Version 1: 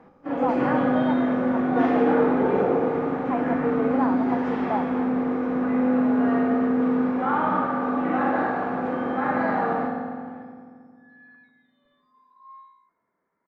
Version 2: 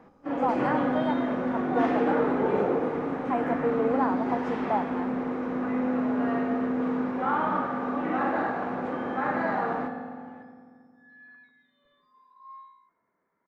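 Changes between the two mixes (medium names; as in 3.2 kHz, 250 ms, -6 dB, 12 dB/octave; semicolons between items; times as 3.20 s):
first sound: send -7.0 dB; master: add treble shelf 7.5 kHz +10.5 dB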